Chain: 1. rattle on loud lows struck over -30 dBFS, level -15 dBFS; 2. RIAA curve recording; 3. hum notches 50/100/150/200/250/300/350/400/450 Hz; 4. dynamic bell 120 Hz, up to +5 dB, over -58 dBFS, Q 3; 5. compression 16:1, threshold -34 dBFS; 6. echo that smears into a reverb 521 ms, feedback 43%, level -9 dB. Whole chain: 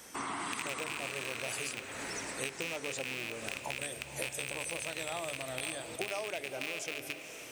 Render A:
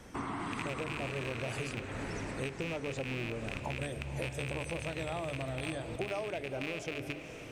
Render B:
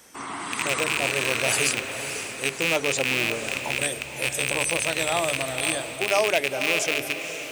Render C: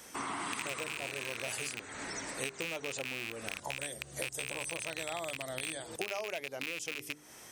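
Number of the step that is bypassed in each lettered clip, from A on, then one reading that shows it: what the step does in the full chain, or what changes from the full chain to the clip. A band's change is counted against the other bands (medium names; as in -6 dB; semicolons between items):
2, 125 Hz band +13.0 dB; 5, mean gain reduction 10.5 dB; 6, echo-to-direct -8.0 dB to none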